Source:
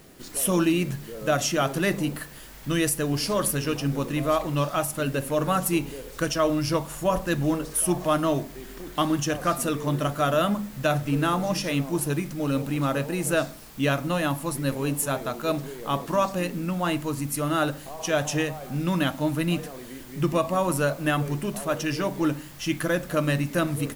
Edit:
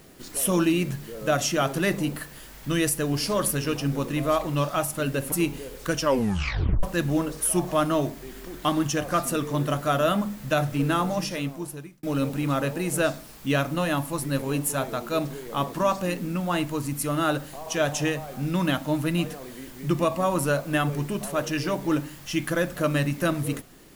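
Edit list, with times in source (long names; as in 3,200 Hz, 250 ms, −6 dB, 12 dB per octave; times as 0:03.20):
0:05.32–0:05.65: remove
0:06.35: tape stop 0.81 s
0:11.39–0:12.36: fade out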